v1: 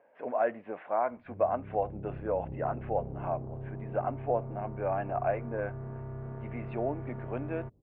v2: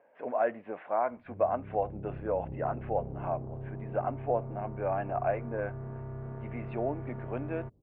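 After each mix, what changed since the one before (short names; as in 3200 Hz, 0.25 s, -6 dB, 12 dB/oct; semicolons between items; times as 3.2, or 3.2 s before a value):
none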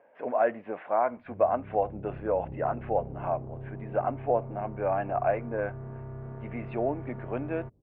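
speech +3.5 dB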